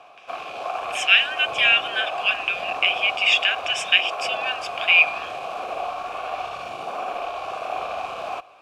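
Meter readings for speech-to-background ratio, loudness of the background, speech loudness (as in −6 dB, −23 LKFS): 11.0 dB, −30.5 LKFS, −19.5 LKFS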